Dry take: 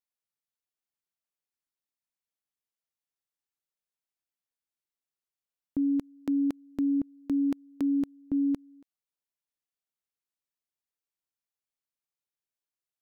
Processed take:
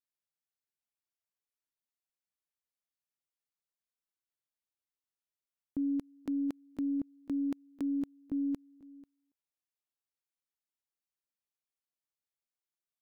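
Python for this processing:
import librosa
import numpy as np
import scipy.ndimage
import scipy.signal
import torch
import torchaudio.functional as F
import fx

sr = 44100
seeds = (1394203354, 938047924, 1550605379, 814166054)

y = fx.tracing_dist(x, sr, depth_ms=0.1)
y = y + 10.0 ** (-21.5 / 20.0) * np.pad(y, (int(491 * sr / 1000.0), 0))[:len(y)]
y = F.gain(torch.from_numpy(y), -5.5).numpy()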